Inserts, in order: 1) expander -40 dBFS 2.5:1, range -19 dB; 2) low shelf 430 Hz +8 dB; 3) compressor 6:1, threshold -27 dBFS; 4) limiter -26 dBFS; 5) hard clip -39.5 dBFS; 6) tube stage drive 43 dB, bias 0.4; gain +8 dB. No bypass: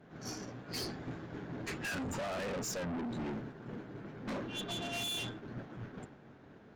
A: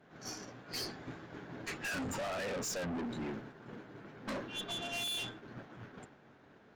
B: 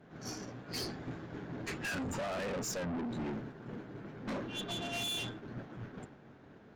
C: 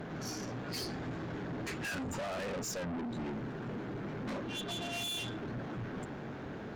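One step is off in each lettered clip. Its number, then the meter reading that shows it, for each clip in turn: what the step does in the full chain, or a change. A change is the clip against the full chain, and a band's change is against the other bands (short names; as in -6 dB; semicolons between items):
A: 2, 125 Hz band -4.5 dB; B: 5, distortion -6 dB; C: 1, momentary loudness spread change -6 LU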